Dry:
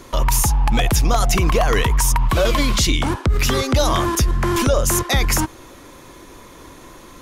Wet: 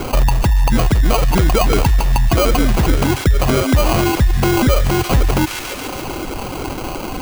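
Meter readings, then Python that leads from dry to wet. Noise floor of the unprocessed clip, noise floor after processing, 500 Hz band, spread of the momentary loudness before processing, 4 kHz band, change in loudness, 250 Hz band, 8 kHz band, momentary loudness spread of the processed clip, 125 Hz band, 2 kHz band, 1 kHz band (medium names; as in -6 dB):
-42 dBFS, -26 dBFS, +3.0 dB, 2 LU, -0.5 dB, +2.0 dB, +5.5 dB, -4.5 dB, 11 LU, +4.5 dB, +1.5 dB, +2.0 dB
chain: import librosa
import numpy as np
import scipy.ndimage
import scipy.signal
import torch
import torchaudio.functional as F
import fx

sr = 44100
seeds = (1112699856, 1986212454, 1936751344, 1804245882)

y = scipy.signal.sosfilt(scipy.signal.butter(2, 2800.0, 'lowpass', fs=sr, output='sos'), x)
y = fx.dereverb_blind(y, sr, rt60_s=1.0)
y = fx.dynamic_eq(y, sr, hz=740.0, q=0.83, threshold_db=-34.0, ratio=4.0, max_db=-7)
y = fx.sample_hold(y, sr, seeds[0], rate_hz=1800.0, jitter_pct=0)
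y = fx.echo_wet_highpass(y, sr, ms=141, feedback_pct=72, hz=1700.0, wet_db=-13.0)
y = fx.env_flatten(y, sr, amount_pct=50)
y = F.gain(torch.from_numpy(y), 4.0).numpy()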